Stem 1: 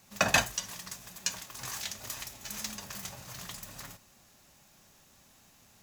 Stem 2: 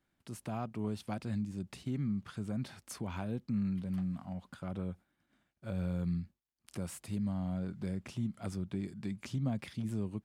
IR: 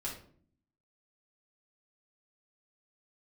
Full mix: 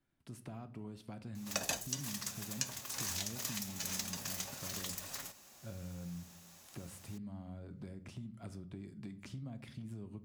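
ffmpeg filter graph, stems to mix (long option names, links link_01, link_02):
-filter_complex "[0:a]bass=frequency=250:gain=-14,treble=frequency=4000:gain=3,adelay=1350,volume=0.5dB[link_01];[1:a]acompressor=threshold=-42dB:ratio=2,volume=-7dB,asplit=2[link_02][link_03];[link_03]volume=-8dB[link_04];[2:a]atrim=start_sample=2205[link_05];[link_04][link_05]afir=irnorm=-1:irlink=0[link_06];[link_01][link_02][link_06]amix=inputs=3:normalize=0,lowshelf=frequency=390:gain=4.5,acrossover=split=610|1400|3200|6600[link_07][link_08][link_09][link_10][link_11];[link_07]acompressor=threshold=-42dB:ratio=4[link_12];[link_08]acompressor=threshold=-57dB:ratio=4[link_13];[link_09]acompressor=threshold=-49dB:ratio=4[link_14];[link_10]acompressor=threshold=-42dB:ratio=4[link_15];[link_11]acompressor=threshold=-41dB:ratio=4[link_16];[link_12][link_13][link_14][link_15][link_16]amix=inputs=5:normalize=0"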